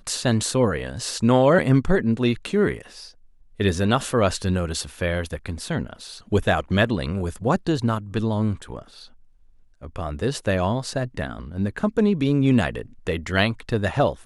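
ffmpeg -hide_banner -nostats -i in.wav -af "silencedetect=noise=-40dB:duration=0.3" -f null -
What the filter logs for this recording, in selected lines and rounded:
silence_start: 3.10
silence_end: 3.59 | silence_duration: 0.49
silence_start: 9.07
silence_end: 9.82 | silence_duration: 0.75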